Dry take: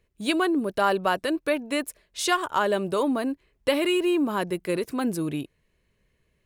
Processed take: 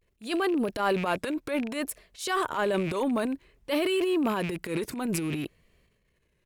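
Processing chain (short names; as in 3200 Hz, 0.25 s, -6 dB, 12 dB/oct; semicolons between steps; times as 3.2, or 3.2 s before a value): rattling part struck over -41 dBFS, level -31 dBFS; transient shaper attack -10 dB, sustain +8 dB; vibrato 0.57 Hz 87 cents; gain -2.5 dB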